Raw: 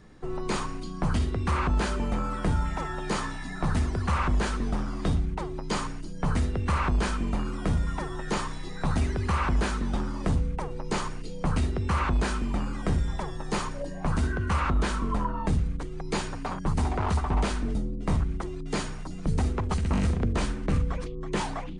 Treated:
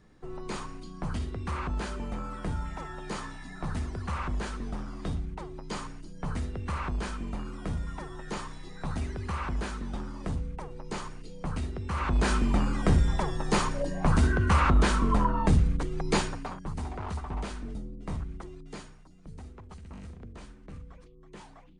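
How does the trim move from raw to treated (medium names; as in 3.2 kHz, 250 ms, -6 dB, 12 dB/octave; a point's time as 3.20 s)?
11.89 s -7 dB
12.33 s +3.5 dB
16.17 s +3.5 dB
16.63 s -9 dB
18.53 s -9 dB
19.10 s -19 dB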